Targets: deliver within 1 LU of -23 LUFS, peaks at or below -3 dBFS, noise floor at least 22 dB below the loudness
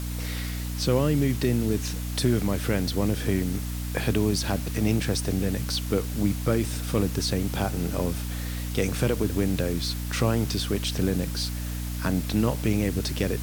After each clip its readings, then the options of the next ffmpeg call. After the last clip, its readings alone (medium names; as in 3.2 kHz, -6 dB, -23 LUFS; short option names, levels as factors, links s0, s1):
hum 60 Hz; highest harmonic 300 Hz; hum level -29 dBFS; noise floor -31 dBFS; noise floor target -49 dBFS; loudness -26.5 LUFS; peak level -9.5 dBFS; loudness target -23.0 LUFS
-> -af "bandreject=f=60:t=h:w=4,bandreject=f=120:t=h:w=4,bandreject=f=180:t=h:w=4,bandreject=f=240:t=h:w=4,bandreject=f=300:t=h:w=4"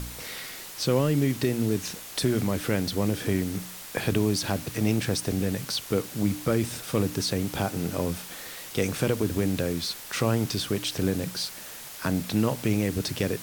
hum not found; noise floor -41 dBFS; noise floor target -50 dBFS
-> -af "afftdn=nr=9:nf=-41"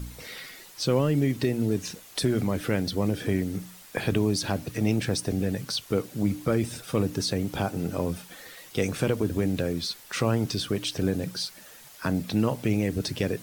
noise floor -49 dBFS; noise floor target -50 dBFS
-> -af "afftdn=nr=6:nf=-49"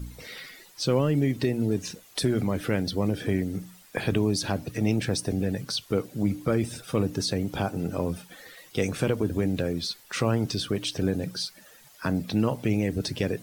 noise floor -54 dBFS; loudness -28.0 LUFS; peak level -11.0 dBFS; loudness target -23.0 LUFS
-> -af "volume=1.78"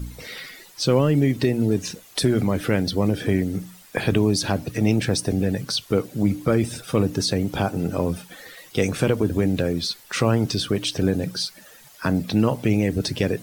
loudness -23.0 LUFS; peak level -6.0 dBFS; noise floor -49 dBFS